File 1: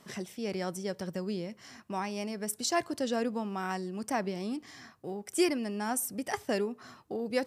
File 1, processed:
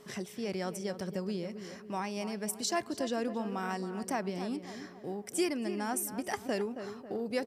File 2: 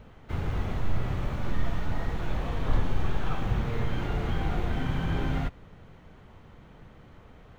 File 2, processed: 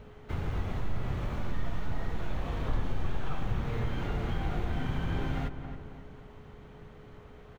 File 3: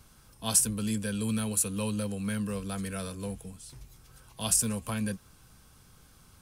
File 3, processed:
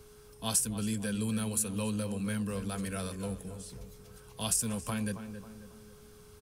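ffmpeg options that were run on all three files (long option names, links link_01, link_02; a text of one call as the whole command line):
ffmpeg -i in.wav -filter_complex "[0:a]aeval=exprs='val(0)+0.00178*sin(2*PI*420*n/s)':channel_layout=same,asplit=2[link_01][link_02];[link_02]adelay=272,lowpass=frequency=1800:poles=1,volume=-11dB,asplit=2[link_03][link_04];[link_04]adelay=272,lowpass=frequency=1800:poles=1,volume=0.47,asplit=2[link_05][link_06];[link_06]adelay=272,lowpass=frequency=1800:poles=1,volume=0.47,asplit=2[link_07][link_08];[link_08]adelay=272,lowpass=frequency=1800:poles=1,volume=0.47,asplit=2[link_09][link_10];[link_10]adelay=272,lowpass=frequency=1800:poles=1,volume=0.47[link_11];[link_01][link_03][link_05][link_07][link_09][link_11]amix=inputs=6:normalize=0,acompressor=threshold=-33dB:ratio=1.5" out.wav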